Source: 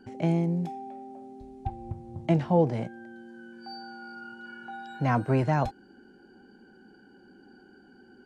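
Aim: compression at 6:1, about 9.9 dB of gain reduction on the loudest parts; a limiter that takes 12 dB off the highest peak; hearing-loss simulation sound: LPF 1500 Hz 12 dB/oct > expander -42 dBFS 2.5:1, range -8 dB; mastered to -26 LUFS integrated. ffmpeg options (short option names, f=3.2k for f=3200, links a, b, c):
-af "acompressor=threshold=-28dB:ratio=6,alimiter=level_in=5.5dB:limit=-24dB:level=0:latency=1,volume=-5.5dB,lowpass=1.5k,agate=range=-8dB:threshold=-42dB:ratio=2.5,volume=15dB"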